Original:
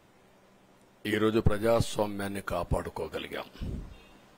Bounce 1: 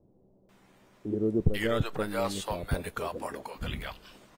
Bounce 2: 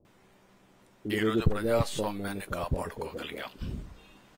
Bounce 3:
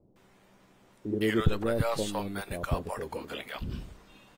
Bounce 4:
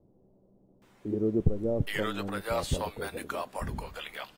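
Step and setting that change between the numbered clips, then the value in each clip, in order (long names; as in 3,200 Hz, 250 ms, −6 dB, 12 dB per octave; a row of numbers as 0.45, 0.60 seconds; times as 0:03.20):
multiband delay without the direct sound, delay time: 490, 50, 160, 820 milliseconds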